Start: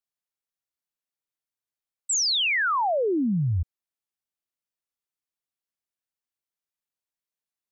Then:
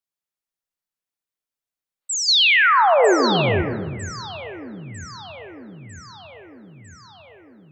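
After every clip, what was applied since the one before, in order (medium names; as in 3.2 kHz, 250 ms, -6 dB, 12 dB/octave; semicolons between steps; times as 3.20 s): echo whose repeats swap between lows and highs 475 ms, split 1.8 kHz, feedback 77%, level -8 dB; time-frequency box 2.02–3.78 s, 340–4600 Hz +8 dB; algorithmic reverb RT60 1.3 s, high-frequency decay 0.3×, pre-delay 55 ms, DRR 6 dB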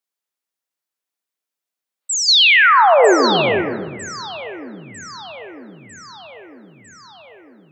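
high-pass 230 Hz 12 dB/octave; trim +4 dB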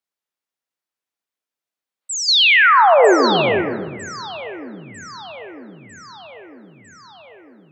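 treble shelf 5.6 kHz -7 dB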